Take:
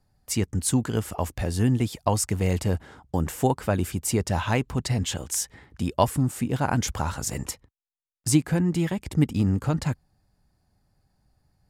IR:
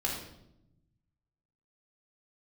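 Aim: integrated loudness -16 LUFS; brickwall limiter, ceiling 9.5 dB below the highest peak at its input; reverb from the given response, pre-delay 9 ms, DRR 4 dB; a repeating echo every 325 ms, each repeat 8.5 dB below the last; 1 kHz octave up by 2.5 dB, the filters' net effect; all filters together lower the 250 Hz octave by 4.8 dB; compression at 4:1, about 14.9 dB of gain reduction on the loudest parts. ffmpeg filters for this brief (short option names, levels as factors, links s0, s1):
-filter_complex "[0:a]equalizer=f=250:t=o:g=-7,equalizer=f=1000:t=o:g=3.5,acompressor=threshold=0.0251:ratio=4,alimiter=level_in=1.26:limit=0.0631:level=0:latency=1,volume=0.794,aecho=1:1:325|650|975|1300:0.376|0.143|0.0543|0.0206,asplit=2[s0][s1];[1:a]atrim=start_sample=2205,adelay=9[s2];[s1][s2]afir=irnorm=-1:irlink=0,volume=0.335[s3];[s0][s3]amix=inputs=2:normalize=0,volume=8.41"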